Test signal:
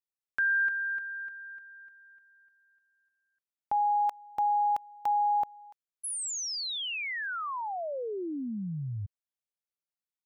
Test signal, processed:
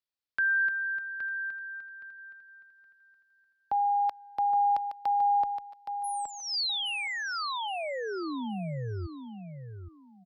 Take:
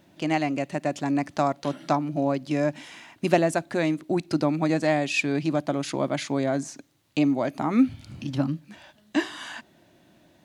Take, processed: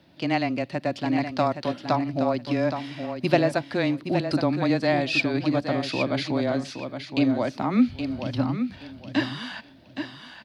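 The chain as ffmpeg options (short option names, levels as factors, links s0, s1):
-af "highshelf=f=5700:t=q:w=3:g=-6.5,afreqshift=-14,aecho=1:1:819|1638|2457:0.398|0.0916|0.0211"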